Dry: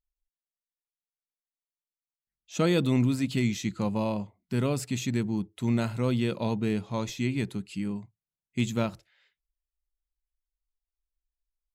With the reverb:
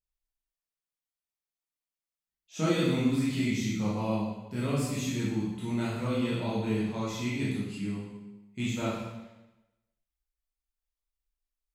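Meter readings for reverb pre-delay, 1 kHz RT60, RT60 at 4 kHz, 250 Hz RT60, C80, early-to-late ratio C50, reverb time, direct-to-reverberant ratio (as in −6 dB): 7 ms, 1.0 s, 0.90 s, 1.0 s, 3.0 dB, 0.0 dB, 1.0 s, −8.5 dB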